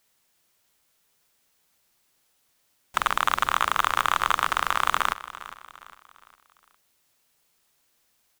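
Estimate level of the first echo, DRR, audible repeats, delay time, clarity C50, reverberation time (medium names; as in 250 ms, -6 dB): -16.0 dB, no reverb, 3, 406 ms, no reverb, no reverb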